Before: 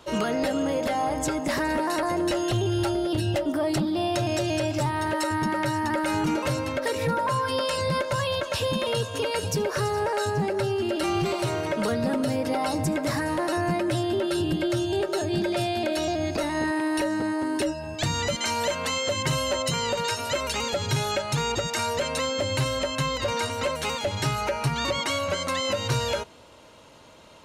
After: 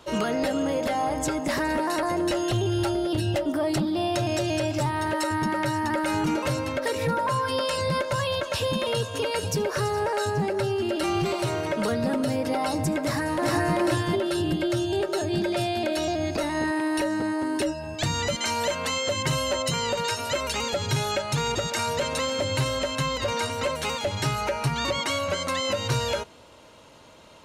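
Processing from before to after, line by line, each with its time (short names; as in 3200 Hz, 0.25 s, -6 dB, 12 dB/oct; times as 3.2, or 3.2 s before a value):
13.02–13.76 echo throw 0.39 s, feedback 15%, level -1 dB
20.78–21.87 echo throw 0.55 s, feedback 70%, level -15.5 dB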